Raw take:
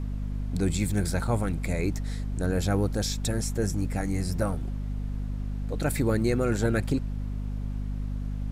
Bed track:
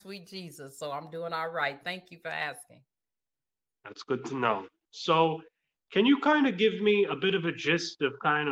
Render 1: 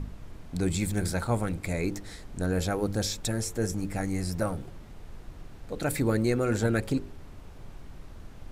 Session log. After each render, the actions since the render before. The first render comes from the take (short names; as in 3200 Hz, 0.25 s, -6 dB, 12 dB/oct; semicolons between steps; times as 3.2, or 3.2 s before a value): de-hum 50 Hz, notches 11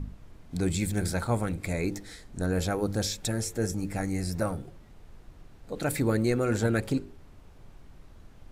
noise print and reduce 6 dB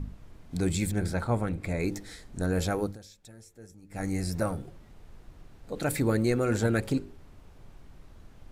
0.91–1.8 high shelf 4200 Hz -10.5 dB; 2.81–4.06 dip -20.5 dB, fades 0.17 s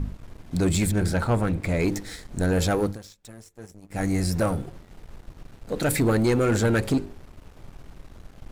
sample leveller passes 2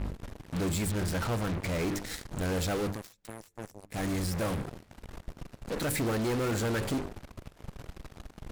soft clip -28.5 dBFS, distortion -8 dB; added harmonics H 4 -19 dB, 7 -13 dB, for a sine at -28.5 dBFS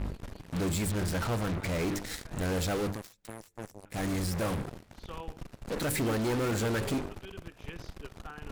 add bed track -20.5 dB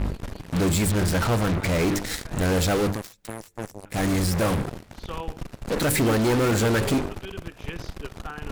gain +8.5 dB